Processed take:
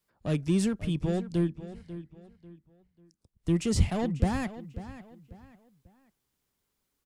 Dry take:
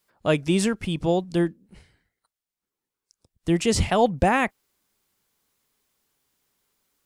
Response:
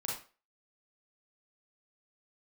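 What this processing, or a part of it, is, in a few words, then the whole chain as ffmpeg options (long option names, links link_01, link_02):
one-band saturation: -filter_complex "[0:a]acrossover=split=310|4300[link_01][link_02][link_03];[link_02]asoftclip=type=tanh:threshold=-25.5dB[link_04];[link_01][link_04][link_03]amix=inputs=3:normalize=0,lowshelf=frequency=250:gain=9.5,asplit=2[link_05][link_06];[link_06]adelay=543,lowpass=frequency=4800:poles=1,volume=-14dB,asplit=2[link_07][link_08];[link_08]adelay=543,lowpass=frequency=4800:poles=1,volume=0.33,asplit=2[link_09][link_10];[link_10]adelay=543,lowpass=frequency=4800:poles=1,volume=0.33[link_11];[link_05][link_07][link_09][link_11]amix=inputs=4:normalize=0,volume=-8dB"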